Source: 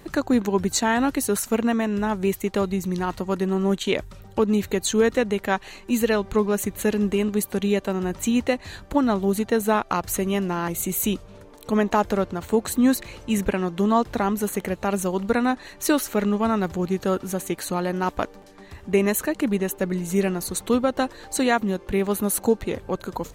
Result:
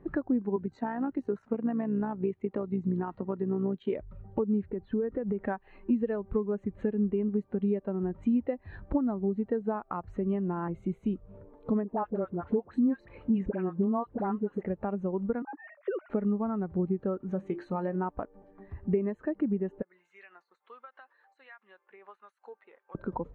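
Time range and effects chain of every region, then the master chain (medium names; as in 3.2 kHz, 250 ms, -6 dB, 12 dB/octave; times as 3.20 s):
0.56–3.93 s: high-pass 100 Hz 6 dB/octave + AM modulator 62 Hz, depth 40% + three bands compressed up and down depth 40%
4.66–5.40 s: compression, threshold -25 dBFS + distance through air 350 m
11.84–14.63 s: bass shelf 130 Hz -6 dB + phase dispersion highs, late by 60 ms, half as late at 930 Hz
15.42–16.10 s: formants replaced by sine waves + compression 8:1, threshold -28 dBFS
17.31–17.96 s: treble shelf 2.4 kHz +5.5 dB + hum notches 50/100/150/200/250/300/350/400 Hz + doubling 26 ms -13.5 dB
19.82–22.95 s: high-pass 1.4 kHz + compression 12:1, threshold -35 dBFS + harmonic tremolo 1.4 Hz, depth 50%, crossover 1.2 kHz
whole clip: compression 10:1, threshold -29 dBFS; low-pass 1.9 kHz 12 dB/octave; spectral contrast expander 1.5:1; trim +1.5 dB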